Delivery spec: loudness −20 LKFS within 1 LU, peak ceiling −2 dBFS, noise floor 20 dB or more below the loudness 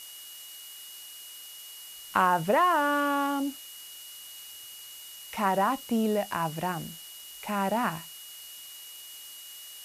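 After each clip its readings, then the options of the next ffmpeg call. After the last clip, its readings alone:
interfering tone 2,900 Hz; level of the tone −47 dBFS; background noise floor −45 dBFS; target noise floor −48 dBFS; integrated loudness −27.5 LKFS; sample peak −10.0 dBFS; target loudness −20.0 LKFS
→ -af "bandreject=frequency=2900:width=30"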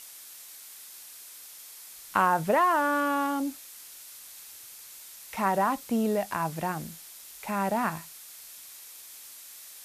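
interfering tone none found; background noise floor −47 dBFS; target noise floor −48 dBFS
→ -af "afftdn=noise_reduction=6:noise_floor=-47"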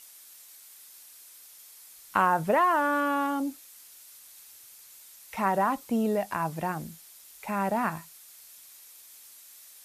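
background noise floor −52 dBFS; integrated loudness −27.5 LKFS; sample peak −10.0 dBFS; target loudness −20.0 LKFS
→ -af "volume=7.5dB"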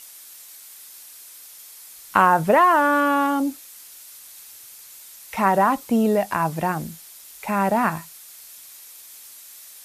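integrated loudness −20.0 LKFS; sample peak −2.5 dBFS; background noise floor −44 dBFS

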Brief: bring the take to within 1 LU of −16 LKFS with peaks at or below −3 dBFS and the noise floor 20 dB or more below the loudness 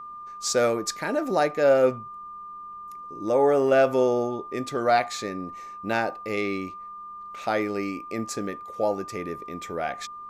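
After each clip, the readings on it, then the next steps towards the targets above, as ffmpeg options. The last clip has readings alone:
interfering tone 1,200 Hz; level of the tone −37 dBFS; integrated loudness −25.5 LKFS; sample peak −10.0 dBFS; target loudness −16.0 LKFS
→ -af "bandreject=frequency=1200:width=30"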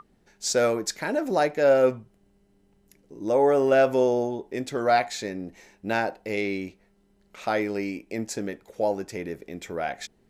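interfering tone none found; integrated loudness −25.5 LKFS; sample peak −10.0 dBFS; target loudness −16.0 LKFS
→ -af "volume=9.5dB,alimiter=limit=-3dB:level=0:latency=1"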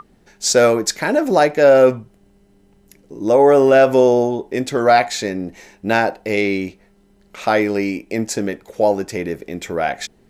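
integrated loudness −16.5 LKFS; sample peak −3.0 dBFS; background noise floor −54 dBFS

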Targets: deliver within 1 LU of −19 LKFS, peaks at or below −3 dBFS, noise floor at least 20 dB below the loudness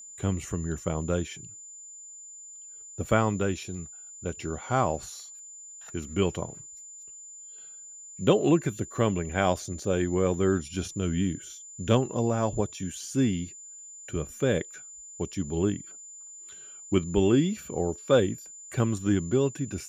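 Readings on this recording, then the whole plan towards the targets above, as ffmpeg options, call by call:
interfering tone 7,100 Hz; level of the tone −43 dBFS; integrated loudness −28.0 LKFS; sample peak −8.0 dBFS; target loudness −19.0 LKFS
→ -af "bandreject=frequency=7100:width=30"
-af "volume=9dB,alimiter=limit=-3dB:level=0:latency=1"

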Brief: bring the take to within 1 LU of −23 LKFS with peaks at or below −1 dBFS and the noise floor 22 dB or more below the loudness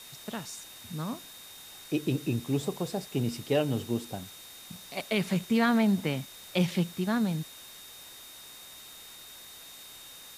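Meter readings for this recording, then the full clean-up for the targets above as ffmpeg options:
interfering tone 3,700 Hz; level of the tone −50 dBFS; background noise floor −48 dBFS; target noise floor −53 dBFS; integrated loudness −30.5 LKFS; sample peak −13.0 dBFS; target loudness −23.0 LKFS
→ -af "bandreject=frequency=3700:width=30"
-af "afftdn=noise_reduction=6:noise_floor=-48"
-af "volume=7.5dB"

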